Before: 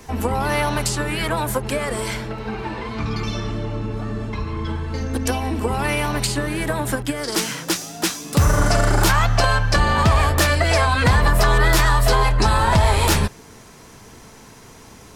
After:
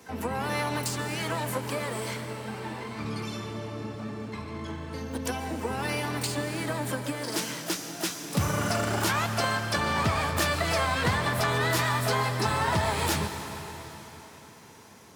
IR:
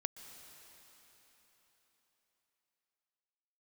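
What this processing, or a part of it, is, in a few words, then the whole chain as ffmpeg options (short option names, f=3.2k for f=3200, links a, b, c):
shimmer-style reverb: -filter_complex "[0:a]highpass=f=92:w=0.5412,highpass=f=92:w=1.3066,asplit=2[a][b];[b]asetrate=88200,aresample=44100,atempo=0.5,volume=-9dB[c];[a][c]amix=inputs=2:normalize=0[d];[1:a]atrim=start_sample=2205[e];[d][e]afir=irnorm=-1:irlink=0,volume=-7.5dB"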